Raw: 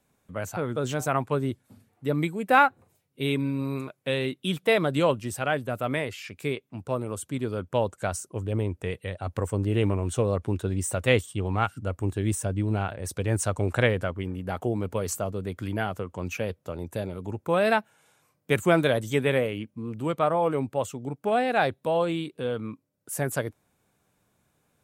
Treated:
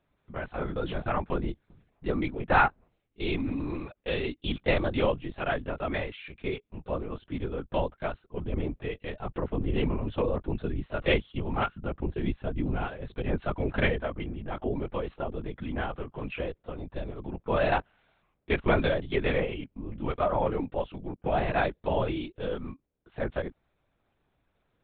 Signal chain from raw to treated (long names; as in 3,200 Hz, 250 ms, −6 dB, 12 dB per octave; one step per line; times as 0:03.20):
linear-prediction vocoder at 8 kHz whisper
level −3 dB